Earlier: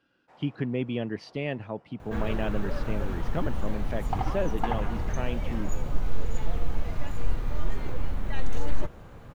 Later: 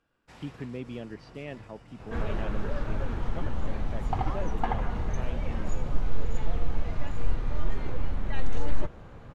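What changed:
speech -8.0 dB; first sound: remove band-pass 710 Hz, Q 1.3; master: add air absorption 58 m

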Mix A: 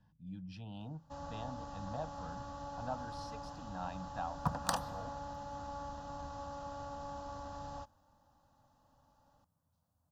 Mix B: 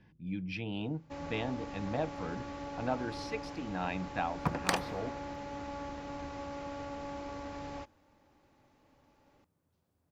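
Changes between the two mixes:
speech +4.5 dB; master: remove fixed phaser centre 920 Hz, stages 4

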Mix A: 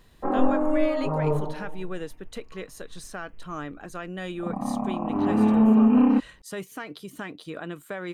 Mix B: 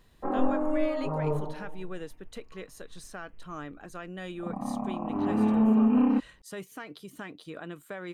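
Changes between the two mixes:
speech -5.0 dB; background -4.5 dB

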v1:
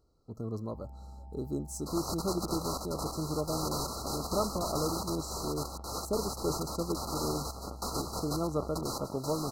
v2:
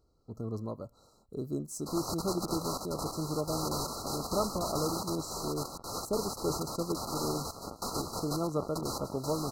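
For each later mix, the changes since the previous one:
first sound: muted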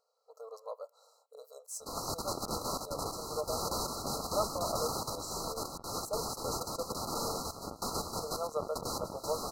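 speech: add brick-wall FIR high-pass 440 Hz

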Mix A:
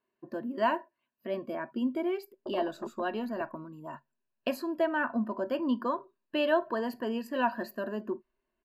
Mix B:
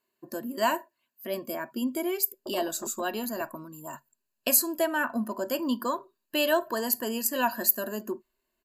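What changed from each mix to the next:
speech: remove air absorption 380 m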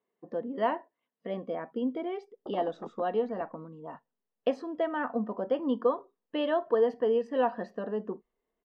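speech: add speaker cabinet 120–2500 Hz, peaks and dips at 210 Hz +4 dB, 310 Hz -7 dB, 460 Hz +8 dB, 1400 Hz -9 dB, 2300 Hz -10 dB; master: remove ripple EQ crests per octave 1.4, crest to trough 11 dB

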